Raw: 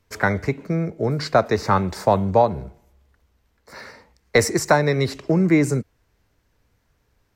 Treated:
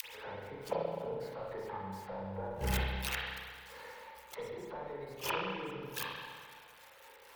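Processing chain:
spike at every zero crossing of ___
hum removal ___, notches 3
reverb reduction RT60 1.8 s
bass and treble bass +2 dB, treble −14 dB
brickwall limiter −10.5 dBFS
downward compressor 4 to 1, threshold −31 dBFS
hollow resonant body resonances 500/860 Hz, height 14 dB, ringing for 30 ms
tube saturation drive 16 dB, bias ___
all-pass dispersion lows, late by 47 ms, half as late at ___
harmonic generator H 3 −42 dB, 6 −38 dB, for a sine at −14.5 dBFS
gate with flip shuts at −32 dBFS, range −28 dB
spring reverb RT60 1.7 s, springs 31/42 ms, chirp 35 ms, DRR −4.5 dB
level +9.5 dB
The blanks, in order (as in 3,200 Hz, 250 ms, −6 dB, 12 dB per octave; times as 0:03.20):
−15 dBFS, 53.94 Hz, 0.55, 580 Hz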